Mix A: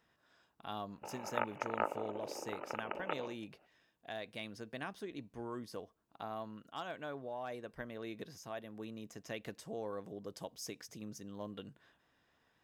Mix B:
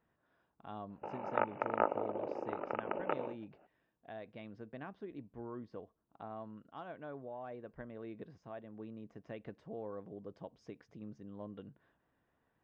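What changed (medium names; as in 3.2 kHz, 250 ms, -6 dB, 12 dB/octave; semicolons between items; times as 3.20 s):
background +7.5 dB; master: add tape spacing loss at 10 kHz 44 dB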